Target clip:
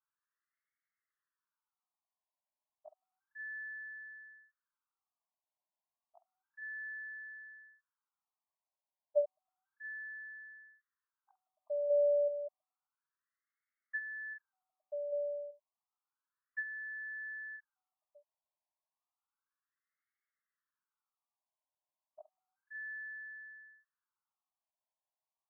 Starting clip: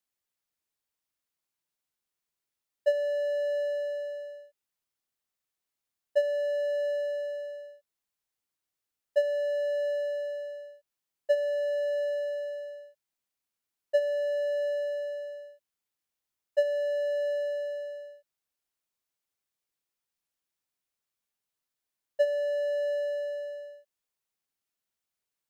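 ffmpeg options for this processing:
ffmpeg -i in.wav -filter_complex "[0:a]lowpass=frequency=2900:width_type=q:width=4,asettb=1/sr,asplit=3[link_01][link_02][link_03];[link_01]atrim=end=11.674[link_04];[link_02]atrim=start=11.67:end=12.17,asetpts=PTS-STARTPTS,afade=type=in:duration=0.004:curve=qsin,afade=type=out:start_time=0.496:duration=0.004:curve=qsin,acrusher=bits=4:mode=log:mix=0:aa=0.000001[link_05];[link_03]atrim=start=12.166[link_06];[link_04][link_05]acrossfade=duration=0.004:curve1=hsin:curve2=qsin[link_07];[link_07][link_06]acrossfade=duration=0.004:curve1=qsin:curve2=hsin,afftfilt=real='re*between(b*sr/1024,770*pow(1600/770,0.5+0.5*sin(2*PI*0.31*pts/sr))/1.41,770*pow(1600/770,0.5+0.5*sin(2*PI*0.31*pts/sr))*1.41)':imag='im*between(b*sr/1024,770*pow(1600/770,0.5+0.5*sin(2*PI*0.31*pts/sr))/1.41,770*pow(1600/770,0.5+0.5*sin(2*PI*0.31*pts/sr))*1.41)':win_size=1024:overlap=0.75,volume=1dB" out.wav

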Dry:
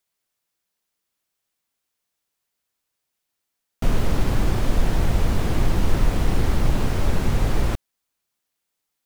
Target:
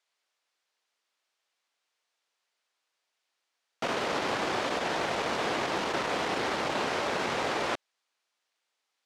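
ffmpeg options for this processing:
ffmpeg -i in.wav -af "asoftclip=type=tanh:threshold=-8dB,highpass=510,lowpass=5300,volume=4dB" out.wav

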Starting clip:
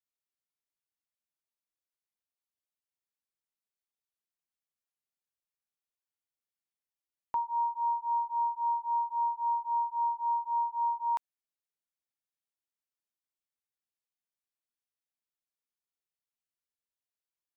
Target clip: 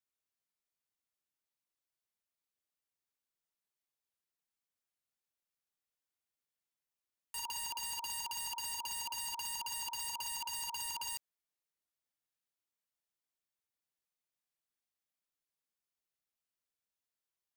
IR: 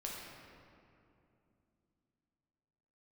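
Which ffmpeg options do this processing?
-af "aeval=exprs='(mod(63.1*val(0)+1,2)-1)/63.1':channel_layout=same"

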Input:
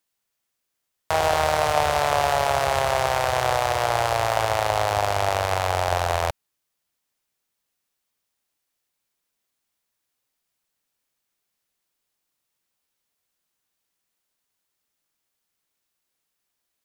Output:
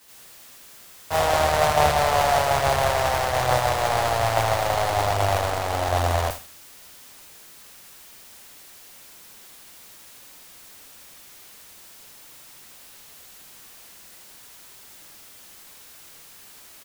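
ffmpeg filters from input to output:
ffmpeg -i in.wav -af "aeval=exprs='val(0)+0.5*0.1*sgn(val(0))':channel_layout=same,aecho=1:1:80|160|240|320:0.422|0.143|0.0487|0.0166,agate=range=-33dB:threshold=-12dB:ratio=3:detection=peak,volume=1.5dB" out.wav

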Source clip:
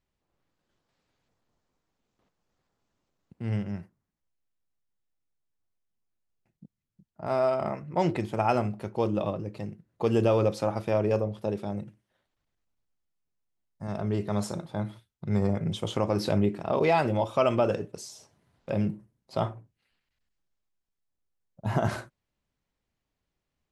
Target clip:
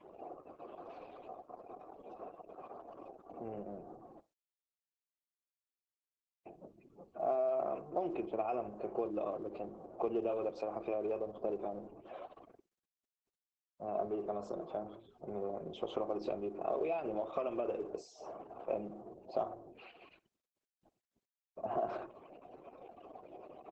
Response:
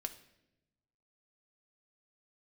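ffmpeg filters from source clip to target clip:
-filter_complex "[0:a]aeval=exprs='val(0)+0.5*0.0178*sgn(val(0))':channel_layout=same,afftdn=noise_reduction=30:noise_floor=-43,acompressor=threshold=-26dB:ratio=6,adynamicequalizer=threshold=0.00447:dfrequency=750:dqfactor=1.8:tfrequency=750:tqfactor=1.8:attack=5:release=100:ratio=0.375:range=4:mode=cutabove:tftype=bell,acrossover=split=350|3000[link_01][link_02][link_03];[link_02]acompressor=threshold=-34dB:ratio=2.5[link_04];[link_01][link_04][link_03]amix=inputs=3:normalize=0,asplit=3[link_05][link_06][link_07];[link_05]bandpass=frequency=730:width_type=q:width=8,volume=0dB[link_08];[link_06]bandpass=frequency=1090:width_type=q:width=8,volume=-6dB[link_09];[link_07]bandpass=frequency=2440:width_type=q:width=8,volume=-9dB[link_10];[link_08][link_09][link_10]amix=inputs=3:normalize=0,equalizer=frequency=360:width_type=o:width=1.3:gain=15,asplit=2[link_11][link_12];[link_12]adelay=63,lowpass=frequency=2400:poles=1,volume=-21.5dB,asplit=2[link_13][link_14];[link_14]adelay=63,lowpass=frequency=2400:poles=1,volume=0.15[link_15];[link_13][link_15]amix=inputs=2:normalize=0[link_16];[link_11][link_16]amix=inputs=2:normalize=0,volume=2.5dB" -ar 48000 -c:a libopus -b:a 10k

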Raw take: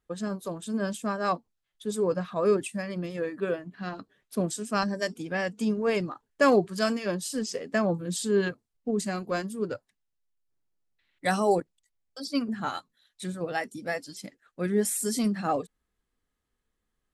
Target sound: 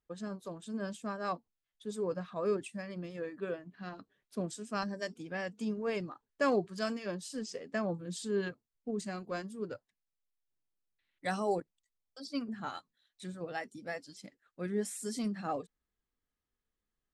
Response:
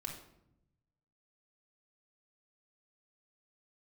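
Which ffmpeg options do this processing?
-af "lowpass=8100,volume=-8.5dB"

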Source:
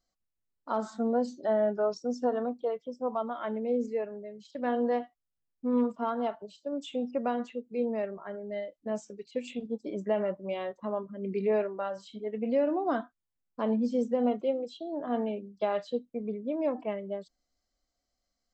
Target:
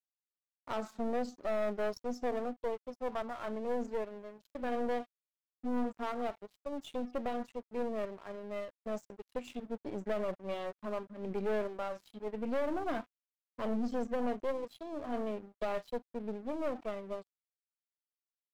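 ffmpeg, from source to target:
ffmpeg -i in.wav -af "aeval=exprs='(tanh(28.2*val(0)+0.6)-tanh(0.6))/28.2':channel_layout=same,aeval=exprs='sgn(val(0))*max(abs(val(0))-0.00224,0)':channel_layout=same" out.wav

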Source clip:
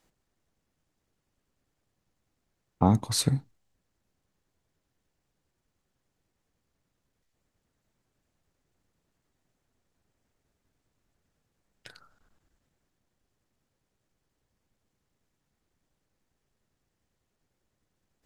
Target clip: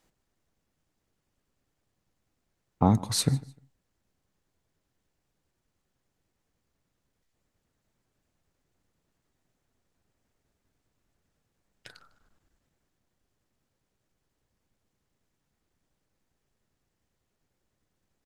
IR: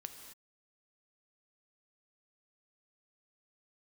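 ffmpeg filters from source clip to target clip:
-af "aecho=1:1:151|302:0.075|0.018"

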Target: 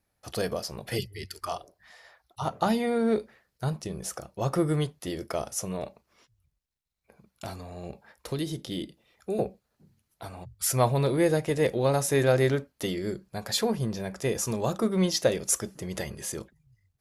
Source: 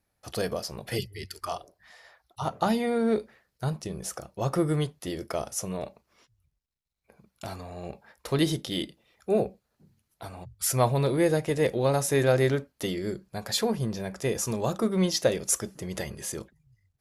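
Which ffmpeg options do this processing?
ffmpeg -i in.wav -filter_complex "[0:a]asettb=1/sr,asplit=3[link_01][link_02][link_03];[link_01]atrim=end=7.504[link_04];[link_02]atrim=start=7.5:end=9.39,asetpts=PTS-STARTPTS,afade=type=in:duration=0.004:curve=qsin,afade=type=out:start_time=1.886:duration=0.004:curve=qsin,acrossover=split=530|3200[link_05][link_06][link_07];[link_05]acompressor=threshold=-29dB:ratio=4[link_08];[link_06]acompressor=threshold=-46dB:ratio=4[link_09];[link_07]acompressor=threshold=-42dB:ratio=4[link_10];[link_08][link_09][link_10]amix=inputs=3:normalize=0[link_11];[link_03]atrim=start=9.386[link_12];[link_04][link_11]acrossfade=duration=0.004:curve1=hsin:curve2=qsin[link_13];[link_13][link_12]acrossfade=duration=0.004:curve1=qsin:curve2=hsin" out.wav

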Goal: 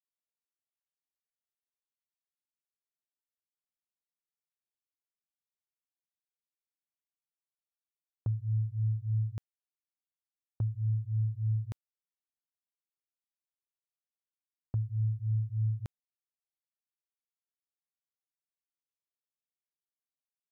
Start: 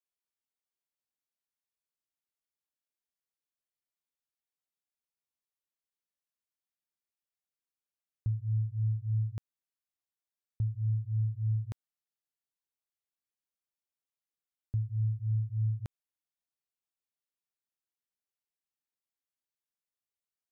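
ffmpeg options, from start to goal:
ffmpeg -i in.wav -af "agate=range=-17dB:threshold=-41dB:ratio=16:detection=peak" out.wav

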